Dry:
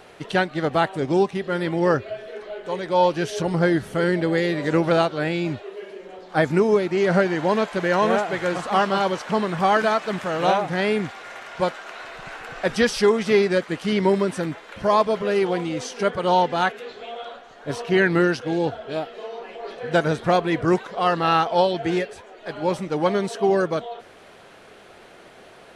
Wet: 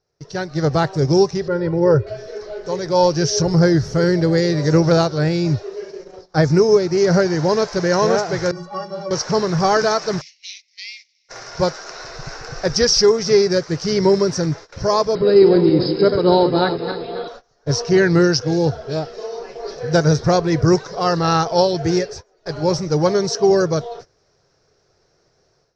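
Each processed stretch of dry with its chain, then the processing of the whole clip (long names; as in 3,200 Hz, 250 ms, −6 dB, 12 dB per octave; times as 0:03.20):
0:01.48–0:02.07: head-to-tape spacing loss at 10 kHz 33 dB + comb filter 2.1 ms, depth 71%
0:08.51–0:09.11: low-pass filter 2,800 Hz 6 dB per octave + stiff-string resonator 170 Hz, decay 0.29 s, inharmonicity 0.03
0:10.21–0:11.29: Butterworth high-pass 2,100 Hz 96 dB per octave + high-frequency loss of the air 140 metres
0:15.15–0:17.28: feedback delay that plays each chunk backwards 136 ms, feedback 58%, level −7 dB + linear-phase brick-wall low-pass 5,200 Hz + hollow resonant body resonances 290/3,900 Hz, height 13 dB, ringing for 20 ms
whole clip: noise gate −39 dBFS, range −20 dB; drawn EQ curve 150 Hz 0 dB, 210 Hz −15 dB, 430 Hz −7 dB, 700 Hz −13 dB, 1,500 Hz −13 dB, 3,200 Hz −20 dB, 5,500 Hz +8 dB, 9,000 Hz −25 dB; automatic gain control gain up to 14.5 dB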